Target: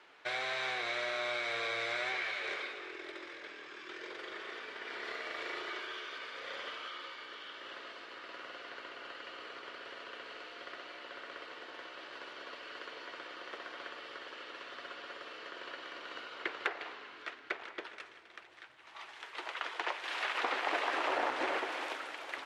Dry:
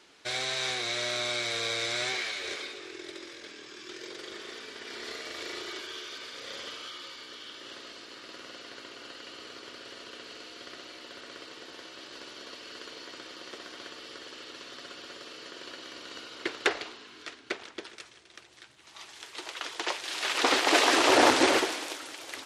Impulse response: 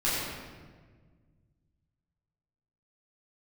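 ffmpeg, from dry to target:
-filter_complex "[0:a]acrossover=split=490 2800:gain=0.224 1 0.112[link_01][link_02][link_03];[link_01][link_02][link_03]amix=inputs=3:normalize=0,acompressor=threshold=-35dB:ratio=4,asplit=2[link_04][link_05];[1:a]atrim=start_sample=2205,adelay=145[link_06];[link_05][link_06]afir=irnorm=-1:irlink=0,volume=-26.5dB[link_07];[link_04][link_07]amix=inputs=2:normalize=0,volume=2.5dB"

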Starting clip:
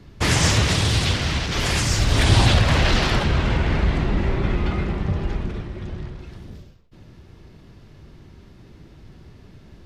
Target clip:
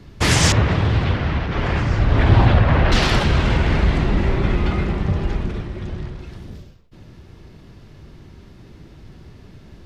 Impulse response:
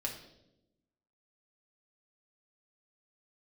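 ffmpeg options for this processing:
-filter_complex "[0:a]asettb=1/sr,asplit=3[link_01][link_02][link_03];[link_01]atrim=end=0.524[link_04];[link_02]atrim=start=0.52:end=2.92,asetpts=PTS-STARTPTS,afade=type=in:duration=0.004:curve=qsin,afade=type=out:start_time=2.396:duration=0.004:curve=qsin,lowpass=1700[link_05];[link_03]atrim=start=2.916[link_06];[link_04][link_05]acrossfade=duration=0.004:curve1=hsin:curve2=qsin[link_07];[link_07][link_06]acrossfade=duration=0.004:curve1=qsin:curve2=hsin,volume=3dB"

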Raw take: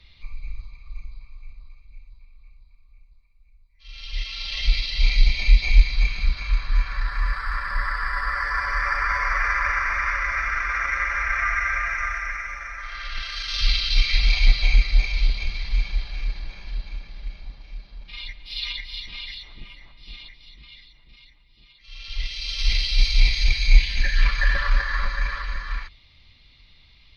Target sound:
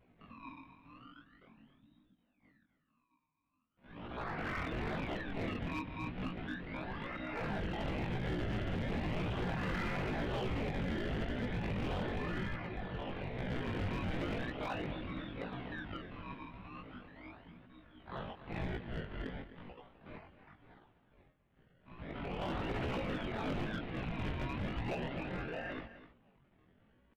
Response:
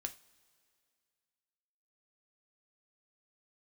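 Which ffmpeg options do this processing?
-af "afftfilt=real='re*pow(10,9/40*sin(2*PI*(1.6*log(max(b,1)*sr/1024/100)/log(2)-(1.5)*(pts-256)/sr)))':imag='im*pow(10,9/40*sin(2*PI*(1.6*log(max(b,1)*sr/1024/100)/log(2)-(1.5)*(pts-256)/sr)))':win_size=1024:overlap=0.75,lowshelf=frequency=140:gain=5,agate=range=-7dB:threshold=-38dB:ratio=16:detection=peak,acrusher=samples=38:mix=1:aa=0.000001:lfo=1:lforange=38:lforate=0.38,adynamicequalizer=threshold=0.00631:dfrequency=830:dqfactor=2.1:tfrequency=830:tqfactor=2.1:attack=5:release=100:ratio=0.375:range=3:mode=cutabove:tftype=bell,asetrate=78577,aresample=44100,atempo=0.561231,acompressor=threshold=-12dB:ratio=3,highpass=frequency=160:width_type=q:width=0.5412,highpass=frequency=160:width_type=q:width=1.307,lowpass=frequency=3500:width_type=q:width=0.5176,lowpass=frequency=3500:width_type=q:width=0.7071,lowpass=frequency=3500:width_type=q:width=1.932,afreqshift=-380,flanger=delay=16:depth=6.7:speed=0.96,aecho=1:1:257:0.2,alimiter=limit=-23dB:level=0:latency=1:release=125,volume=30.5dB,asoftclip=hard,volume=-30.5dB,volume=-2dB"

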